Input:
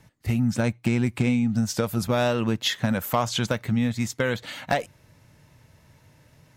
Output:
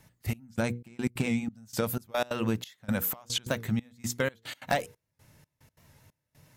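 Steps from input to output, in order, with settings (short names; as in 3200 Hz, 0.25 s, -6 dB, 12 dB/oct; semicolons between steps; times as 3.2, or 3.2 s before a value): high shelf 9100 Hz +10.5 dB; notches 60/120/180/240/300/360/420/480 Hz; step gate "xxxx...xxx..x." 182 bpm -24 dB; record warp 78 rpm, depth 100 cents; gain -3.5 dB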